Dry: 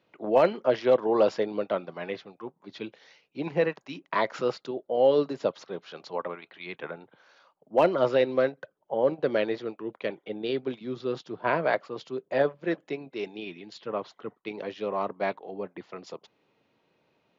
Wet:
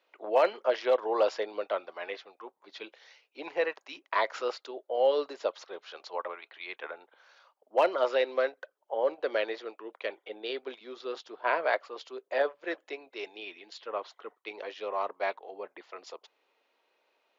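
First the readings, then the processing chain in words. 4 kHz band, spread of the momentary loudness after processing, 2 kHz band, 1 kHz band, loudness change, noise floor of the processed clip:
0.0 dB, 18 LU, −0.5 dB, −1.5 dB, −3.5 dB, −79 dBFS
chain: Bessel high-pass filter 590 Hz, order 4

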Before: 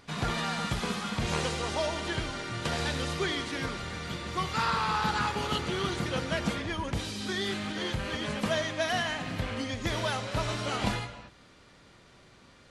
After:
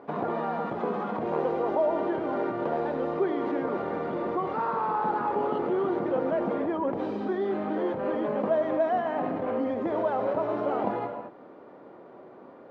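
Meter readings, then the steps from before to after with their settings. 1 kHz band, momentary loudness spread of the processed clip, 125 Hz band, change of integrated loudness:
+4.0 dB, 5 LU, −8.5 dB, +2.5 dB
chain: in parallel at +1 dB: compressor whose output falls as the input rises −37 dBFS, ratio −1
on the sum: flat-topped band-pass 500 Hz, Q 0.83
level +5 dB

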